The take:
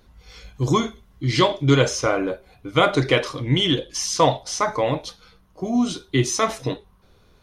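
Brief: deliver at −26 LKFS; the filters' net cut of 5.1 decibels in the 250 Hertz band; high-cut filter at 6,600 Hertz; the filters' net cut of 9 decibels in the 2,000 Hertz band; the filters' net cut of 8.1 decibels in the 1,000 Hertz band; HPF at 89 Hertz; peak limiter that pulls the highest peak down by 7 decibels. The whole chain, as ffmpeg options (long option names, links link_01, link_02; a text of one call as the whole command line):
ffmpeg -i in.wav -af "highpass=89,lowpass=6600,equalizer=frequency=250:width_type=o:gain=-6,equalizer=frequency=1000:width_type=o:gain=-7.5,equalizer=frequency=2000:width_type=o:gain=-9,volume=2dB,alimiter=limit=-13.5dB:level=0:latency=1" out.wav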